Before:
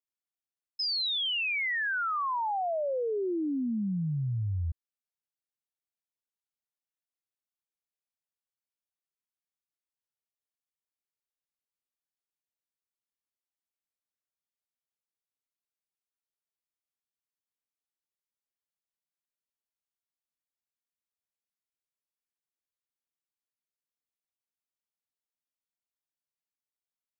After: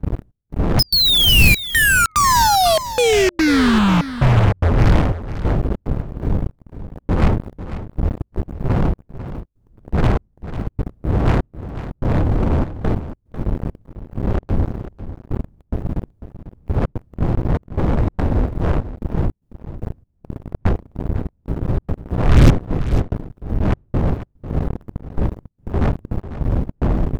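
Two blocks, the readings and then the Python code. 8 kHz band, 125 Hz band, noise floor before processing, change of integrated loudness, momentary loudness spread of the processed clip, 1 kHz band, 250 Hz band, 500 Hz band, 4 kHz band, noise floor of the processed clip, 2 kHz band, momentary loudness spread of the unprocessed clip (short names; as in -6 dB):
n/a, +22.5 dB, under -85 dBFS, +11.0 dB, 18 LU, +16.5 dB, +19.0 dB, +16.5 dB, +16.0 dB, -62 dBFS, +15.0 dB, 6 LU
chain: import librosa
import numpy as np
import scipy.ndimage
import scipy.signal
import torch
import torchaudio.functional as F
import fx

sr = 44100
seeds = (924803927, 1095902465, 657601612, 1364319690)

p1 = fx.dmg_wind(x, sr, seeds[0], corner_hz=98.0, level_db=-34.0)
p2 = fx.step_gate(p1, sr, bpm=146, pattern='xxx..xxx.xxx', floor_db=-24.0, edge_ms=4.5)
p3 = fx.leveller(p2, sr, passes=5)
p4 = fx.fold_sine(p3, sr, drive_db=15, ceiling_db=-7.5)
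p5 = p3 + (p4 * 10.0 ** (-9.0 / 20.0))
p6 = p5 + 10.0 ** (-13.0 / 20.0) * np.pad(p5, (int(496 * sr / 1000.0), 0))[:len(p5)]
y = p6 * 10.0 ** (1.5 / 20.0)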